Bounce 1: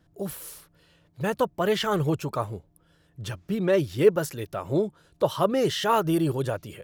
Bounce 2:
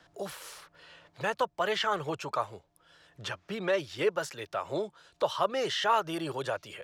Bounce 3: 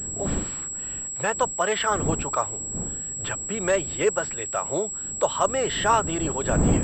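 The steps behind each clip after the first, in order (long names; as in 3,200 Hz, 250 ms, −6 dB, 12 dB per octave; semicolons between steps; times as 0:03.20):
three-way crossover with the lows and the highs turned down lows −16 dB, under 560 Hz, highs −18 dB, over 7,600 Hz; multiband upward and downward compressor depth 40%
wind on the microphone 240 Hz −37 dBFS; switching amplifier with a slow clock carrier 7,700 Hz; level +5.5 dB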